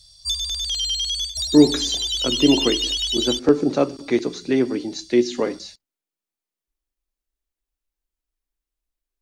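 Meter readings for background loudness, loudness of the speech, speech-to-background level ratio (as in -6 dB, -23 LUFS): -22.0 LUFS, -21.0 LUFS, 1.0 dB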